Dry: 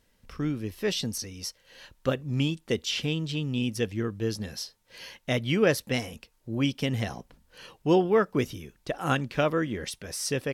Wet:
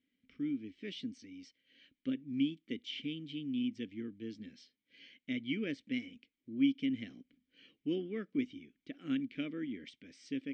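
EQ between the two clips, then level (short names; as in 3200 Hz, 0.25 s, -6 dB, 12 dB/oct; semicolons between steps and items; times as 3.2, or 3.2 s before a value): vowel filter i; brick-wall FIR low-pass 8700 Hz; high shelf 5100 Hz -4.5 dB; 0.0 dB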